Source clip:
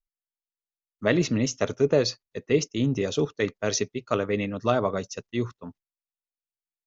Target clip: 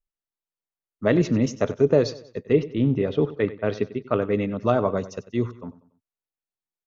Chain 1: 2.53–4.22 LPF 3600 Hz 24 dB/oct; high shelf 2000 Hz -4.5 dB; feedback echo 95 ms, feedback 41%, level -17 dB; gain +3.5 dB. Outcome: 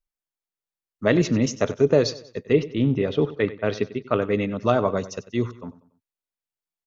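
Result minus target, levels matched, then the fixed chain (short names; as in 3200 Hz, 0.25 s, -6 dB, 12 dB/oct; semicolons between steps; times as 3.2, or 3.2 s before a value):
4000 Hz band +5.0 dB
2.53–4.22 LPF 3600 Hz 24 dB/oct; high shelf 2000 Hz -11.5 dB; feedback echo 95 ms, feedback 41%, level -17 dB; gain +3.5 dB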